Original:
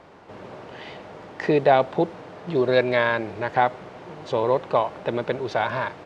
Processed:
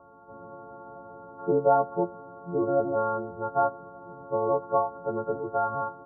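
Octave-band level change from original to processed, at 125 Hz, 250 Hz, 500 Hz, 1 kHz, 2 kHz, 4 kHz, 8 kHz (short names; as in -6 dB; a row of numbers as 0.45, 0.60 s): -7.0 dB, -4.5 dB, -4.5 dB, -3.0 dB, under -15 dB, under -40 dB, n/a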